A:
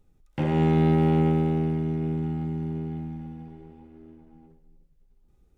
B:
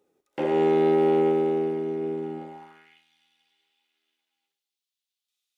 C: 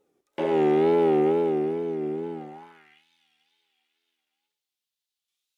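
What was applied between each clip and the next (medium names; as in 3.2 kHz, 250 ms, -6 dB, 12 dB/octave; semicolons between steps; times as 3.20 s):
high-pass sweep 410 Hz -> 3.5 kHz, 2.38–3.05 s
wow and flutter 100 cents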